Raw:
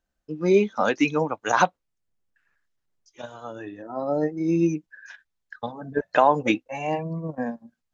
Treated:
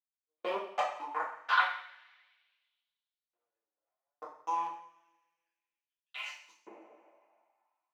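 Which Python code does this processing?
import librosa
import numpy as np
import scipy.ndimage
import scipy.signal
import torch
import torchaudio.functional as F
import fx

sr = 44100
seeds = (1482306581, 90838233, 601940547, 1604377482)

p1 = fx.spec_delay(x, sr, highs='early', ms=292)
p2 = fx.high_shelf(p1, sr, hz=2000.0, db=-4.5)
p3 = fx.level_steps(p2, sr, step_db=22)
p4 = fx.backlash(p3, sr, play_db=-51.5)
p5 = fx.power_curve(p4, sr, exponent=3.0)
p6 = fx.rev_double_slope(p5, sr, seeds[0], early_s=0.54, late_s=2.0, knee_db=-20, drr_db=-7.0)
p7 = fx.filter_lfo_highpass(p6, sr, shape='saw_up', hz=0.3, low_hz=390.0, high_hz=4700.0, q=2.4)
p8 = p7 + fx.echo_single(p7, sr, ms=176, db=-22.0, dry=0)
y = p8 * 10.0 ** (-4.5 / 20.0)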